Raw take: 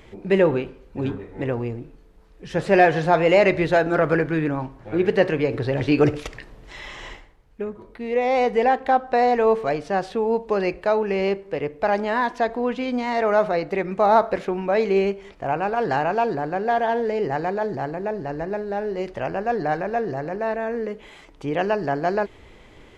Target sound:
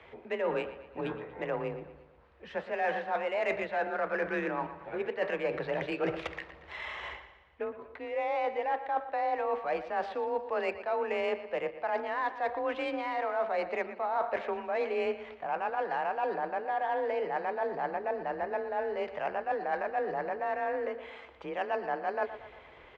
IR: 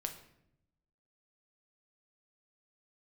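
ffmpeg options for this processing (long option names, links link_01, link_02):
-filter_complex "[0:a]acrossover=split=470 3600:gain=0.178 1 0.2[link_01][link_02][link_03];[link_01][link_02][link_03]amix=inputs=3:normalize=0,areverse,acompressor=threshold=-28dB:ratio=10,areverse,aecho=1:1:118|236|354|472|590:0.224|0.112|0.056|0.028|0.014,afreqshift=31,adynamicsmooth=sensitivity=3.5:basefreq=4700"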